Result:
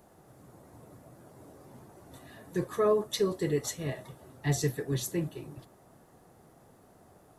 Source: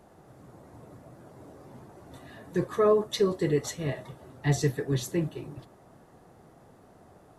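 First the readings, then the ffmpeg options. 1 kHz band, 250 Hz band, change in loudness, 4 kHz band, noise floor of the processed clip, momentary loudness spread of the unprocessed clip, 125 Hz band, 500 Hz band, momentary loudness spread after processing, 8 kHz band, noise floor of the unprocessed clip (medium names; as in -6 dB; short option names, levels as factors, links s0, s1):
-3.5 dB, -3.5 dB, -3.0 dB, -1.5 dB, -60 dBFS, 20 LU, -3.5 dB, -3.5 dB, 20 LU, +1.5 dB, -56 dBFS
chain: -af "highshelf=f=8000:g=11.5,volume=0.668"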